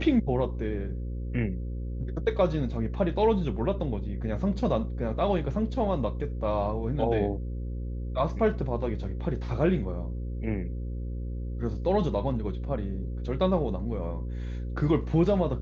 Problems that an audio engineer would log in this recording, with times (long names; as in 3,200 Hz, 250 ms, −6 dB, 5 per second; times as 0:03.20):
mains buzz 60 Hz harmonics 9 −33 dBFS